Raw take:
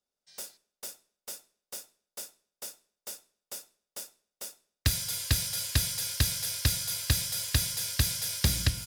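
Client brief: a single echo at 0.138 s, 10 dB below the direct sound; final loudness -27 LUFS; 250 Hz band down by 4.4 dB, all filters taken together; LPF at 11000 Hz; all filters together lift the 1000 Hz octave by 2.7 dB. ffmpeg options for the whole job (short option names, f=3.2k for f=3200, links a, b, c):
-af "lowpass=11k,equalizer=f=250:t=o:g=-8,equalizer=f=1k:t=o:g=4,aecho=1:1:138:0.316,volume=2dB"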